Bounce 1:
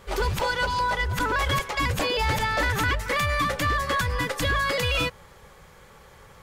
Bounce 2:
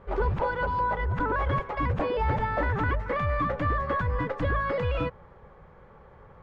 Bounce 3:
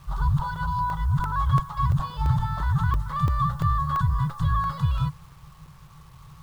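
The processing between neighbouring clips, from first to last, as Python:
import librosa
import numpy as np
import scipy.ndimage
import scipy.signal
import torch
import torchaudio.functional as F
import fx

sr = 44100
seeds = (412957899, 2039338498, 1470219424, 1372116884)

y1 = scipy.signal.sosfilt(scipy.signal.butter(2, 1200.0, 'lowpass', fs=sr, output='sos'), x)
y2 = fx.curve_eq(y1, sr, hz=(100.0, 150.0, 210.0, 310.0, 500.0, 1100.0, 2300.0, 3600.0, 5700.0, 9700.0), db=(0, 9, -13, -30, -30, 0, -22, 2, 2, 15))
y2 = fx.quant_dither(y2, sr, seeds[0], bits=10, dither='none')
y2 = fx.buffer_crackle(y2, sr, first_s=0.56, period_s=0.34, block=64, kind='zero')
y2 = y2 * librosa.db_to_amplitude(4.5)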